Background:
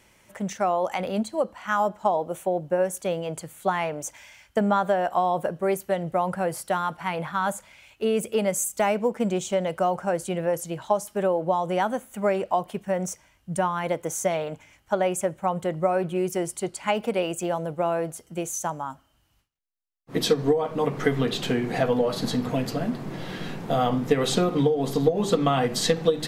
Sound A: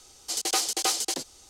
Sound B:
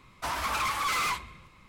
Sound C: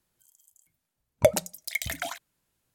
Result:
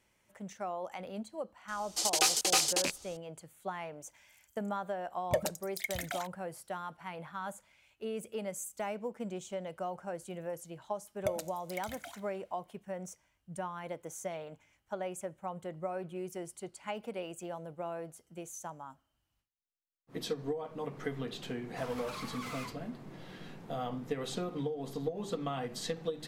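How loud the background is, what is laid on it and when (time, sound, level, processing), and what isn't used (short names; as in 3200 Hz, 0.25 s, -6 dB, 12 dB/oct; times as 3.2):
background -14.5 dB
1.68 add A -1.5 dB + rattling part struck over -50 dBFS, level -19 dBFS
4.09 add C -6 dB + soft clip -15.5 dBFS
10.02 add C -8.5 dB + resonator 78 Hz, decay 1.6 s, mix 50%
21.54 add B -15.5 dB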